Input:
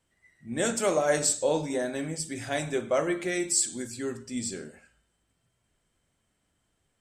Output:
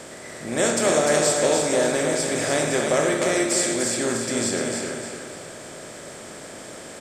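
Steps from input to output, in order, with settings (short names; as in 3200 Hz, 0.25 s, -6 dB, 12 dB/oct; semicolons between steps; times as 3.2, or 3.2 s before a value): per-bin compression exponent 0.4; bell 3100 Hz +2.5 dB; notch 7900 Hz, Q 24; on a send: feedback echo 0.298 s, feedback 40%, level -5 dB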